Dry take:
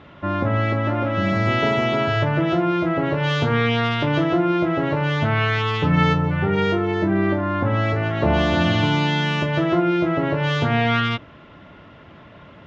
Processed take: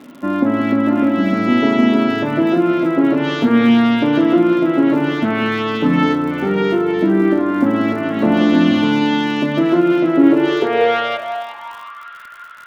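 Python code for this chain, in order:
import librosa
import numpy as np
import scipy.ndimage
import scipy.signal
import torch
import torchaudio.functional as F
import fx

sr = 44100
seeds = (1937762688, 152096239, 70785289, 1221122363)

y = fx.echo_alternate(x, sr, ms=181, hz=1200.0, feedback_pct=67, wet_db=-8.0)
y = fx.filter_sweep_highpass(y, sr, from_hz=250.0, to_hz=1400.0, start_s=10.13, end_s=12.17, q=7.4)
y = fx.dmg_crackle(y, sr, seeds[0], per_s=93.0, level_db=-32.0)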